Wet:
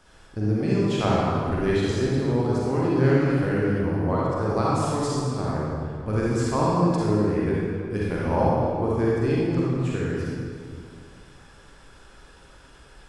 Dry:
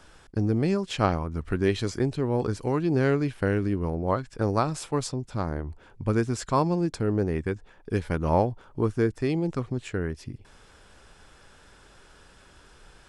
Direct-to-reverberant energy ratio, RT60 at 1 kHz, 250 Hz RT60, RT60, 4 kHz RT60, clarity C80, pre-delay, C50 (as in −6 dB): −6.5 dB, 2.1 s, 2.4 s, 2.2 s, 1.5 s, −1.5 dB, 37 ms, −5.0 dB